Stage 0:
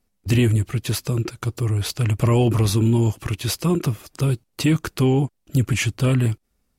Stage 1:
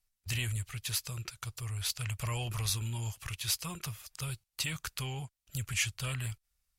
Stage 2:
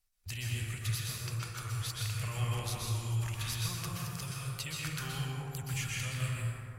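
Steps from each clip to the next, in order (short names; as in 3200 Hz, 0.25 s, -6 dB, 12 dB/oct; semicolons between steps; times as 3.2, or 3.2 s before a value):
passive tone stack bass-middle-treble 10-0-10; gain -4 dB
compressor 2.5:1, threshold -41 dBFS, peak gain reduction 10 dB; plate-style reverb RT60 2.7 s, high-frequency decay 0.35×, pre-delay 0.11 s, DRR -5 dB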